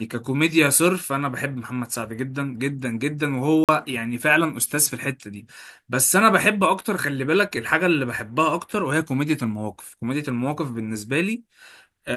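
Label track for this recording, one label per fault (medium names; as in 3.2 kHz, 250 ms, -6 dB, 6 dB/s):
3.640000	3.690000	dropout 47 ms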